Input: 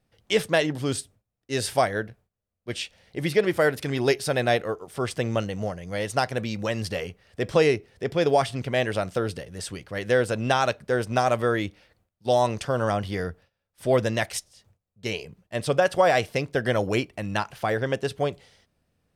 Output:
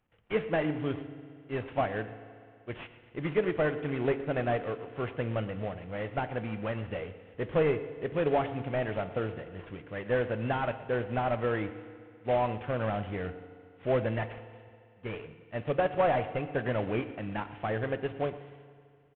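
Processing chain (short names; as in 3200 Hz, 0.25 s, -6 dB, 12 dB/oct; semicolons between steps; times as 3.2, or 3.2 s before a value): CVSD 16 kbps; echo 0.116 s -18 dB; FDN reverb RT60 2.3 s, low-frequency decay 0.95×, high-frequency decay 1×, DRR 12 dB; gain -5.5 dB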